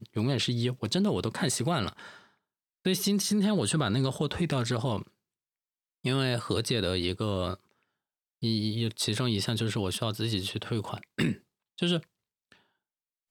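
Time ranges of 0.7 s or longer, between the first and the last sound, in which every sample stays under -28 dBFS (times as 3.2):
1.89–2.86
4.99–6.05
7.54–8.43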